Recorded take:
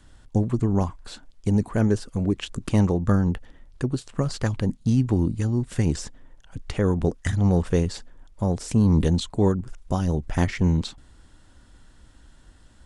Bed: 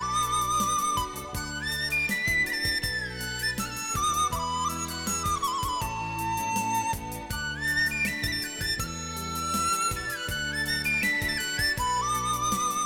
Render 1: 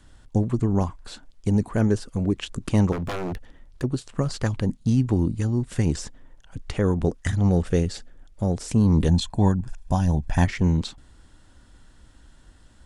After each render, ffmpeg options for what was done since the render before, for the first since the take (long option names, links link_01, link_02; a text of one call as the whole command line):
ffmpeg -i in.wav -filter_complex "[0:a]asettb=1/sr,asplit=3[link_01][link_02][link_03];[link_01]atrim=end=2.924[link_04];[link_02]atrim=start=2.92:end=3.84,asetpts=PTS-STARTPTS,afade=type=in:duration=0.004:curve=qsin,afade=type=out:start_time=0.916:duration=0.004:curve=qsin,aeval=exprs='0.0668*(abs(mod(val(0)/0.0668+3,4)-2)-1)':channel_layout=same[link_05];[link_03]atrim=start=3.836[link_06];[link_04][link_05]acrossfade=duration=0.004:curve1=hsin:curve2=qsin[link_07];[link_07][link_06]acrossfade=duration=0.004:curve1=qsin:curve2=hsin,asettb=1/sr,asplit=3[link_08][link_09][link_10];[link_08]atrim=end=7.494[link_11];[link_09]atrim=start=7.49:end=8.56,asetpts=PTS-STARTPTS,afade=type=in:duration=0.004:curve=qsin,afade=type=out:start_time=1.066:duration=0.004:curve=qsin,equalizer=frequency=1000:width=5.4:gain=-11[link_12];[link_10]atrim=start=8.556[link_13];[link_11][link_12]acrossfade=duration=0.004:curve1=hsin:curve2=qsin[link_14];[link_14][link_13]acrossfade=duration=0.004:curve1=qsin:curve2=hsin,asettb=1/sr,asplit=3[link_15][link_16][link_17];[link_15]atrim=end=9.084[link_18];[link_16]atrim=start=9.08:end=10.46,asetpts=PTS-STARTPTS,afade=type=in:duration=0.004:curve=qsin,afade=type=out:start_time=1.376:duration=0.004:curve=qsin,aecho=1:1:1.2:0.57,atrim=end_sample=60858[link_19];[link_17]atrim=start=10.456[link_20];[link_18][link_19]acrossfade=duration=0.004:curve1=hsin:curve2=qsin[link_21];[link_21][link_20]acrossfade=duration=0.004:curve1=qsin:curve2=hsin" out.wav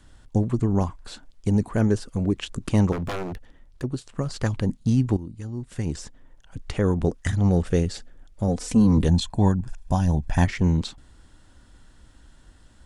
ffmpeg -i in.wav -filter_complex "[0:a]asettb=1/sr,asplit=3[link_01][link_02][link_03];[link_01]atrim=end=8.484[link_04];[link_02]atrim=start=8.48:end=8.98,asetpts=PTS-STARTPTS,afade=type=in:duration=0.004:curve=qsin,afade=type=out:start_time=0.496:duration=0.004:curve=qsin,aecho=1:1:4:0.7,atrim=end_sample=22050[link_05];[link_03]atrim=start=8.976[link_06];[link_04][link_05]acrossfade=duration=0.004:curve1=hsin:curve2=qsin[link_07];[link_07][link_06]acrossfade=duration=0.004:curve1=qsin:curve2=hsin,asplit=4[link_08][link_09][link_10][link_11];[link_08]atrim=end=3.232[link_12];[link_09]atrim=start=3.228:end=4.362,asetpts=PTS-STARTPTS,volume=-3dB[link_13];[link_10]atrim=start=4.358:end=5.17,asetpts=PTS-STARTPTS,afade=type=out:start_time=0.808:duration=0.004:curve=hsin:silence=0.16788[link_14];[link_11]atrim=start=5.17,asetpts=PTS-STARTPTS,afade=type=in:duration=1.55:silence=0.16788[link_15];[link_12][link_13]acrossfade=duration=0.004:curve1=hsin:curve2=hsin[link_16];[link_14][link_15]concat=n=2:v=0:a=1[link_17];[link_16][link_17]acrossfade=duration=0.004:curve1=hsin:curve2=hsin" out.wav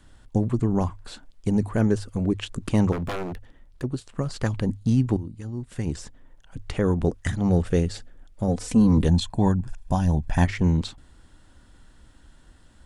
ffmpeg -i in.wav -af "equalizer=frequency=5900:width=1.5:gain=-2.5,bandreject=frequency=50:width_type=h:width=6,bandreject=frequency=100:width_type=h:width=6" out.wav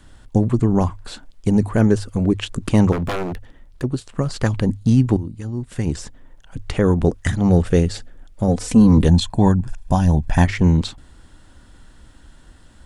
ffmpeg -i in.wav -af "volume=6dB,alimiter=limit=-2dB:level=0:latency=1" out.wav